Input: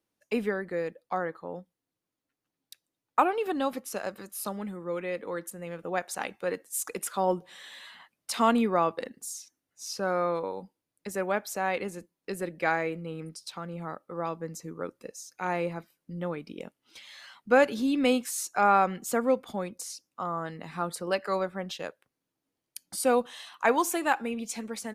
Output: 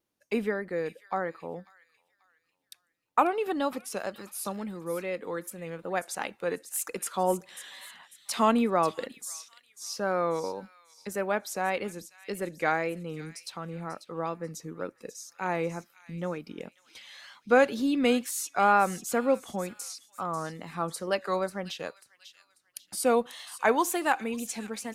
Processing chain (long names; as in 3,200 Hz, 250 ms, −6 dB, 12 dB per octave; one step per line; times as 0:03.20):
delay with a high-pass on its return 542 ms, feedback 36%, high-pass 2,900 Hz, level −10.5 dB
tape wow and flutter 63 cents